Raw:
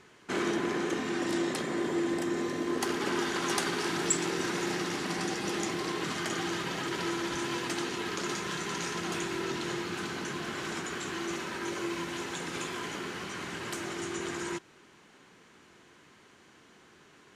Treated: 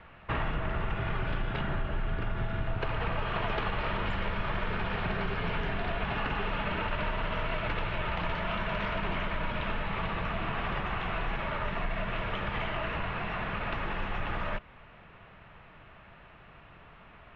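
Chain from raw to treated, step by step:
single-sideband voice off tune −370 Hz 160–3,400 Hz
downward compressor, threshold −33 dBFS, peak gain reduction 7.5 dB
level +6 dB

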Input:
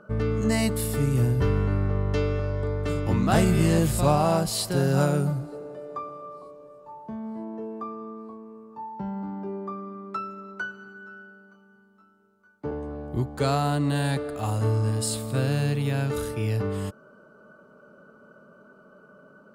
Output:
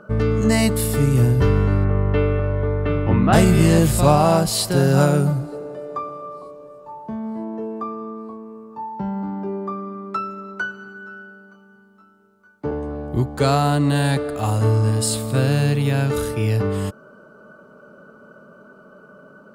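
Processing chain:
0:01.84–0:03.33: low-pass filter 2,900 Hz 24 dB per octave
level +6.5 dB

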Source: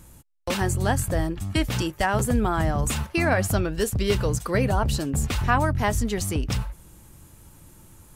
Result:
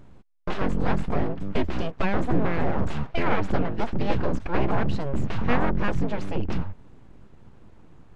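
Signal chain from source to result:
full-wave rectification
head-to-tape spacing loss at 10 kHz 34 dB
level +3.5 dB

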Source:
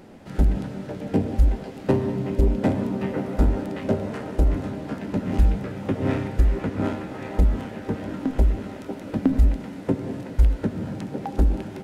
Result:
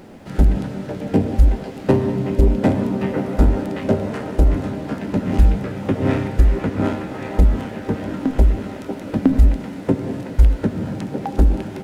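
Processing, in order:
bit reduction 12 bits
level +5 dB

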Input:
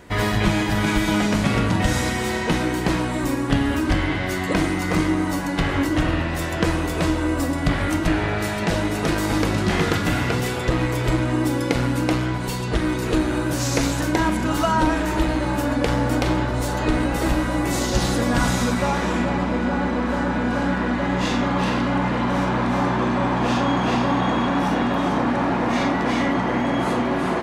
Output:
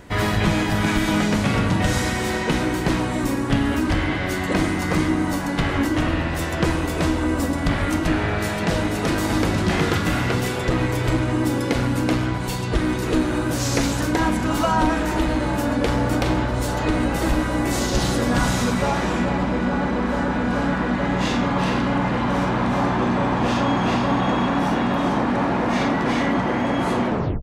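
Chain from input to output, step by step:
turntable brake at the end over 0.36 s
soft clipping −7.5 dBFS, distortion −27 dB
mains hum 60 Hz, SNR 33 dB
pitch-shifted copies added −4 semitones −8 dB

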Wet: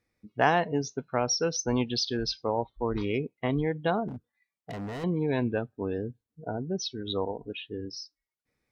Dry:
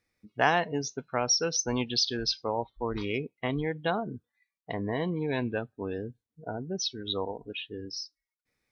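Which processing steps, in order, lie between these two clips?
tilt shelving filter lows +3.5 dB, about 1,200 Hz
0:04.08–0:05.04: gain into a clipping stage and back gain 33.5 dB
harmonic generator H 4 −43 dB, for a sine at −9.5 dBFS

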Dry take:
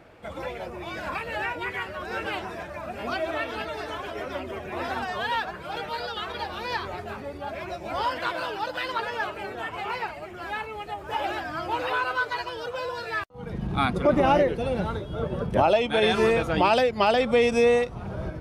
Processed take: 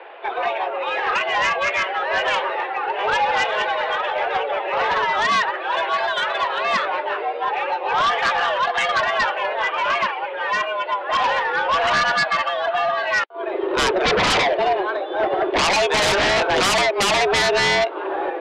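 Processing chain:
0:14.72–0:15.19: downward compressor 4 to 1, threshold −29 dBFS, peak gain reduction 6 dB
single-sideband voice off tune +190 Hz 180–3,400 Hz
sine wavefolder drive 15 dB, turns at −8 dBFS
level −6.5 dB

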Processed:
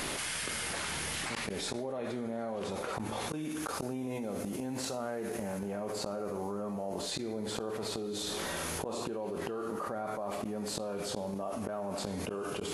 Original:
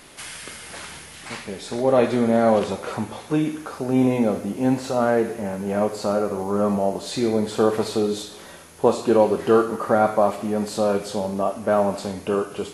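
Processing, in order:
0:03.29–0:05.59: high-shelf EQ 3,800 Hz +7.5 dB
gate with flip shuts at −19 dBFS, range −27 dB
envelope flattener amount 100%
level −9 dB

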